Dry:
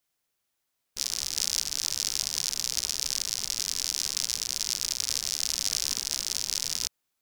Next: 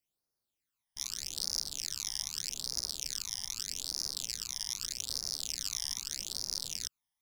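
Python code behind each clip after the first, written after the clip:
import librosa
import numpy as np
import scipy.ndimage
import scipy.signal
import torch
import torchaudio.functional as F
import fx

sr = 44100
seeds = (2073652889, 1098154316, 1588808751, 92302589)

y = fx.phaser_stages(x, sr, stages=12, low_hz=430.0, high_hz=2900.0, hz=0.81, feedback_pct=35)
y = y * librosa.db_to_amplitude(-5.5)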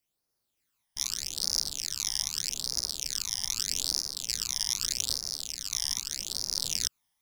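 y = fx.rider(x, sr, range_db=3, speed_s=0.5)
y = fx.tremolo_random(y, sr, seeds[0], hz=3.5, depth_pct=55)
y = y * librosa.db_to_amplitude(8.0)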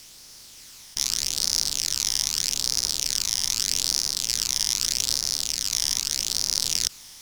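y = fx.bin_compress(x, sr, power=0.4)
y = y * librosa.db_to_amplitude(1.5)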